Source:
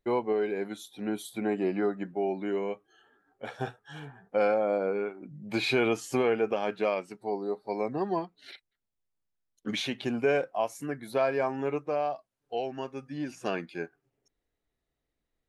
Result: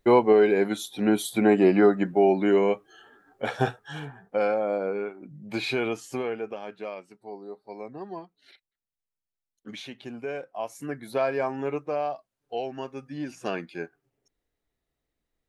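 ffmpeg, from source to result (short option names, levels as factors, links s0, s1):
-af "volume=8.91,afade=t=out:st=3.55:d=0.85:silence=0.334965,afade=t=out:st=5.31:d=1.36:silence=0.375837,afade=t=in:st=10.45:d=0.45:silence=0.354813"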